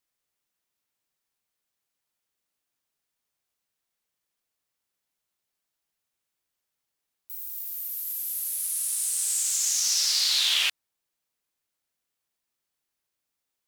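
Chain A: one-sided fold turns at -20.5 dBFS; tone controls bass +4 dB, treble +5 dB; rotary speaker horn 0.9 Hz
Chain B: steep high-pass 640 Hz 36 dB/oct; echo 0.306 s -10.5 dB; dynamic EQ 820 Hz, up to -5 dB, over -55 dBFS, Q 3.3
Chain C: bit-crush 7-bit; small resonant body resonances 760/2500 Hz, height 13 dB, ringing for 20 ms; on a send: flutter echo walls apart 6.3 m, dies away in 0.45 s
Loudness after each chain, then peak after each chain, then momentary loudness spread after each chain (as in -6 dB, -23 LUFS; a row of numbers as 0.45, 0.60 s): -23.5, -24.0, -21.5 LUFS; -10.5, -10.0, -6.5 dBFS; 12, 14, 13 LU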